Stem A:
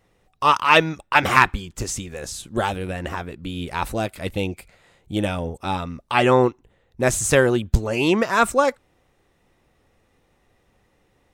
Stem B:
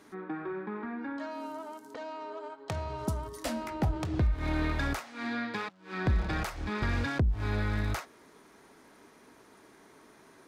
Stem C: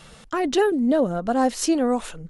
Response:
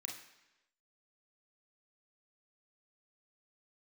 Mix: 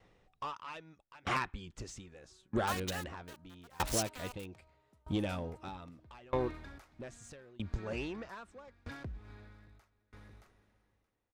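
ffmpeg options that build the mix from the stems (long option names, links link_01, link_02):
-filter_complex "[0:a]lowpass=5500,acompressor=threshold=-24dB:ratio=10,asoftclip=type=tanh:threshold=-22dB,volume=-0.5dB[link_01];[1:a]adelay=1850,volume=-12dB,asplit=2[link_02][link_03];[link_03]volume=-11.5dB[link_04];[2:a]highpass=frequency=1000:width=0.5412,highpass=frequency=1000:width=1.3066,acrusher=bits=4:mix=0:aa=0.000001,adelay=2350,volume=-3.5dB[link_05];[link_04]aecho=0:1:624|1248|1872|2496|3120:1|0.36|0.13|0.0467|0.0168[link_06];[link_01][link_02][link_05][link_06]amix=inputs=4:normalize=0,aeval=exprs='val(0)*pow(10,-28*if(lt(mod(0.79*n/s,1),2*abs(0.79)/1000),1-mod(0.79*n/s,1)/(2*abs(0.79)/1000),(mod(0.79*n/s,1)-2*abs(0.79)/1000)/(1-2*abs(0.79)/1000))/20)':channel_layout=same"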